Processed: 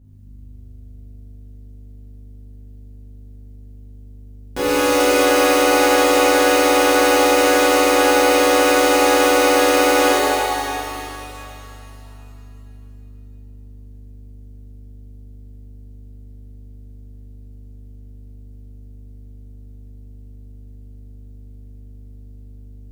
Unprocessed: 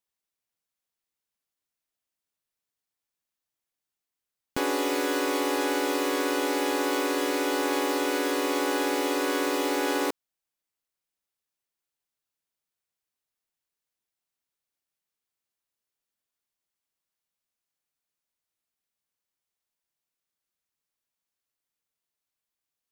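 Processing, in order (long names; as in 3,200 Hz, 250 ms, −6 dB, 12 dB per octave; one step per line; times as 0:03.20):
formants moved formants +2 semitones
mains hum 50 Hz, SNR 20 dB
in parallel at −1.5 dB: brickwall limiter −25.5 dBFS, peak gain reduction 10 dB
on the sum: reverb with rising layers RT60 2.9 s, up +7 semitones, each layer −8 dB, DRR −10 dB
level −3 dB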